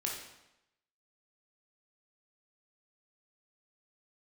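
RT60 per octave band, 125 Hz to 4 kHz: 0.85 s, 0.90 s, 0.90 s, 0.90 s, 0.85 s, 0.80 s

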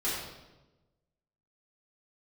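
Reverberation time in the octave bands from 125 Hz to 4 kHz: 1.5 s, 1.3 s, 1.2 s, 1.0 s, 0.85 s, 0.85 s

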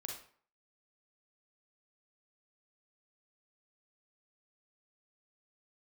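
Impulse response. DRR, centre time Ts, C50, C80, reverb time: 0.5 dB, 34 ms, 3.0 dB, 9.0 dB, 0.50 s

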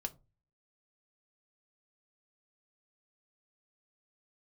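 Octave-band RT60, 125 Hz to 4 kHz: 0.55 s, 0.35 s, 0.30 s, 0.25 s, 0.15 s, 0.15 s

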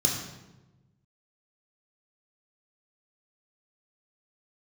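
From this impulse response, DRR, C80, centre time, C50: -1.5 dB, 5.5 dB, 48 ms, 3.5 dB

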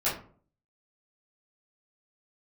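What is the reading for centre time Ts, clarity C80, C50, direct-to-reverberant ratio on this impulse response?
33 ms, 12.5 dB, 6.5 dB, -11.5 dB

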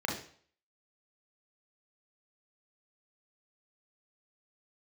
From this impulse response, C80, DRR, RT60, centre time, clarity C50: 10.0 dB, -1.5 dB, 0.50 s, 32 ms, 5.5 dB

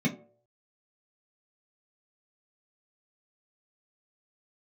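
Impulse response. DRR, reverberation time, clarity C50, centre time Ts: -4.0 dB, 0.55 s, 13.0 dB, 15 ms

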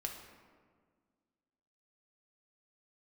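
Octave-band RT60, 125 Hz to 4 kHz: 2.0 s, 2.3 s, 1.8 s, 1.6 s, 1.3 s, 0.90 s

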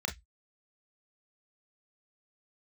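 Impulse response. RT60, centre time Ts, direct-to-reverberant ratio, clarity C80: 0.10 s, 13 ms, 3.0 dB, 28.0 dB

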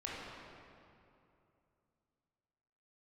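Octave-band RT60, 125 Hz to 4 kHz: 3.3 s, 3.0 s, 2.8 s, 2.6 s, 2.1 s, 1.7 s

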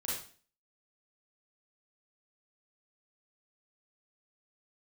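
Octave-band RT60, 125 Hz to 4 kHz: 0.50 s, 0.50 s, 0.45 s, 0.40 s, 0.40 s, 0.40 s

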